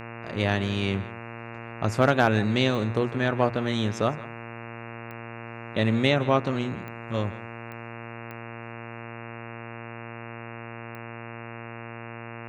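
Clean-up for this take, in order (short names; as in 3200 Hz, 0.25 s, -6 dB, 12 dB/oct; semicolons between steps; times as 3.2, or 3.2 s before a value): clip repair -7.5 dBFS; de-click; de-hum 116.1 Hz, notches 24; inverse comb 0.162 s -19 dB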